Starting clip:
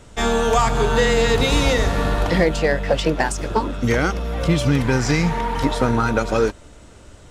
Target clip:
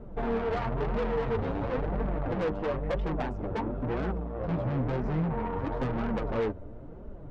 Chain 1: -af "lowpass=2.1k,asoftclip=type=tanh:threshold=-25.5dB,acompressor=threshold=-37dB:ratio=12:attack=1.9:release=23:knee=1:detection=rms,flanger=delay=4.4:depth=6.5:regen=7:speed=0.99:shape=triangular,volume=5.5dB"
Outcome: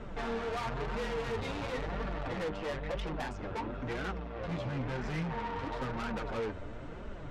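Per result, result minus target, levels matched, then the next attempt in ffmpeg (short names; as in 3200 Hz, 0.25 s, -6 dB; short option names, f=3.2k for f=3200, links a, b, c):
2000 Hz band +6.5 dB; compressor: peak gain reduction +6.5 dB
-af "lowpass=670,asoftclip=type=tanh:threshold=-25.5dB,acompressor=threshold=-37dB:ratio=12:attack=1.9:release=23:knee=1:detection=rms,flanger=delay=4.4:depth=6.5:regen=7:speed=0.99:shape=triangular,volume=5.5dB"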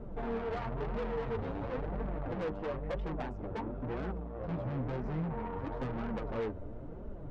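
compressor: peak gain reduction +6.5 dB
-af "lowpass=670,asoftclip=type=tanh:threshold=-25.5dB,acompressor=threshold=-30dB:ratio=12:attack=1.9:release=23:knee=1:detection=rms,flanger=delay=4.4:depth=6.5:regen=7:speed=0.99:shape=triangular,volume=5.5dB"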